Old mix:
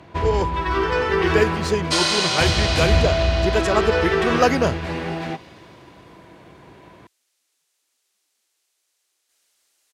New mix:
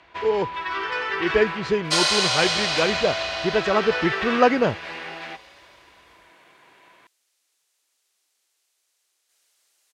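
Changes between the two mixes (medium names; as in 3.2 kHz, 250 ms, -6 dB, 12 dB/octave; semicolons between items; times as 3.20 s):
speech: add low-pass 3.2 kHz 12 dB/octave; first sound: add band-pass filter 2.4 kHz, Q 0.76; second sound: add tone controls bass -13 dB, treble 0 dB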